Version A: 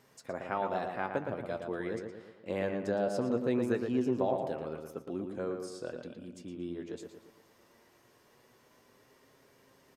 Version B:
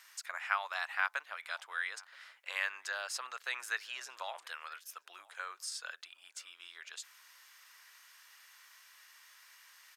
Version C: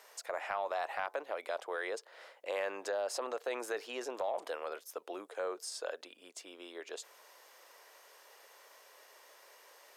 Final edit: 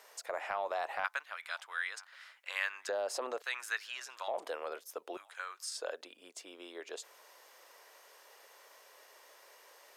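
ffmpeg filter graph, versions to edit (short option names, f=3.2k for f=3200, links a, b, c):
-filter_complex "[1:a]asplit=3[a][b][c];[2:a]asplit=4[d][e][f][g];[d]atrim=end=1.042[h];[a]atrim=start=1.038:end=2.892[i];[e]atrim=start=2.888:end=3.422[j];[b]atrim=start=3.418:end=4.282[k];[f]atrim=start=4.278:end=5.172[l];[c]atrim=start=5.168:end=5.772[m];[g]atrim=start=5.768[n];[h][i]acrossfade=d=0.004:c1=hsin:c2=hsin[o];[o][j]acrossfade=d=0.004:c1=hsin:c2=hsin[p];[p][k]acrossfade=d=0.004:c1=hsin:c2=hsin[q];[q][l]acrossfade=d=0.004:c1=hsin:c2=hsin[r];[r][m]acrossfade=d=0.004:c1=hsin:c2=hsin[s];[s][n]acrossfade=d=0.004:c1=hsin:c2=hsin"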